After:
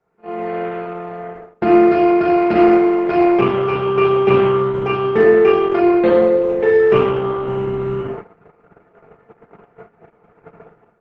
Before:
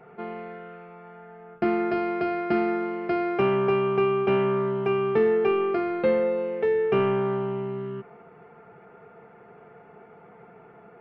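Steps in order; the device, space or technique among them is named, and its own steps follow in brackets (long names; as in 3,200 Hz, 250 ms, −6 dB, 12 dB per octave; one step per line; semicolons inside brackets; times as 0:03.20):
speakerphone in a meeting room (convolution reverb RT60 0.55 s, pre-delay 21 ms, DRR −2 dB; automatic gain control gain up to 15 dB; noise gate −27 dBFS, range −21 dB; level −1 dB; Opus 12 kbit/s 48,000 Hz)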